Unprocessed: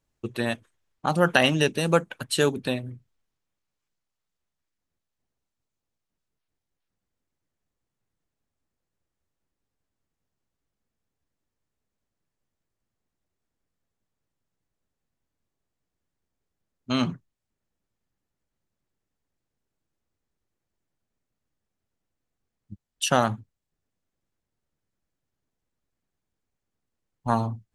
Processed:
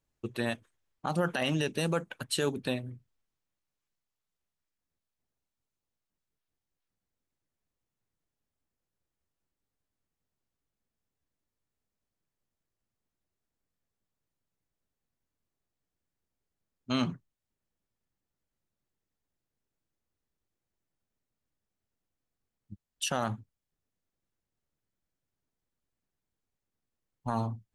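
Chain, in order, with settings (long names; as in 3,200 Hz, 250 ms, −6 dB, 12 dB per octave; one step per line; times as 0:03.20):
brickwall limiter −14 dBFS, peak gain reduction 11.5 dB
level −4.5 dB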